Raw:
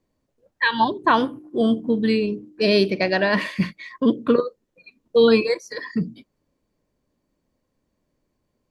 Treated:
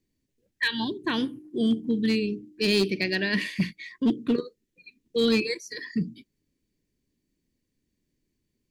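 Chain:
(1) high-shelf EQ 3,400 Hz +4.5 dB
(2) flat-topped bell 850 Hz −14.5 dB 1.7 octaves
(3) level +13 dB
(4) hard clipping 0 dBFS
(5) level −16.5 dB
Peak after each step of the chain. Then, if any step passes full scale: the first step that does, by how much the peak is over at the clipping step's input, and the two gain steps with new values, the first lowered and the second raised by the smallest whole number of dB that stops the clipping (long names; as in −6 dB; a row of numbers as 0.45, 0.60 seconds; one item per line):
−5.0, −7.0, +6.0, 0.0, −16.5 dBFS
step 3, 6.0 dB
step 3 +7 dB, step 5 −10.5 dB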